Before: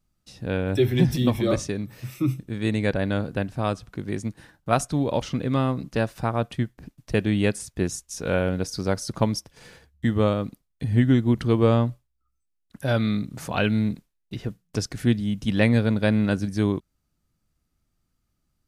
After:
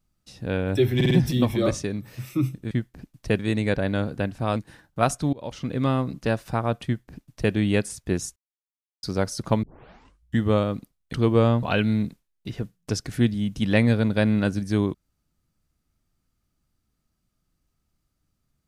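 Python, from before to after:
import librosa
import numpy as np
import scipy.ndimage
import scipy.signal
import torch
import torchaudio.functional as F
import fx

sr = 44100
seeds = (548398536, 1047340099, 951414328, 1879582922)

y = fx.edit(x, sr, fx.stutter(start_s=0.96, slice_s=0.05, count=4),
    fx.cut(start_s=3.73, length_s=0.53),
    fx.fade_in_from(start_s=5.03, length_s=0.47, floor_db=-23.5),
    fx.duplicate(start_s=6.55, length_s=0.68, to_s=2.56),
    fx.silence(start_s=8.06, length_s=0.67),
    fx.tape_start(start_s=9.33, length_s=0.75),
    fx.cut(start_s=10.83, length_s=0.57),
    fx.cut(start_s=11.9, length_s=1.59), tone=tone)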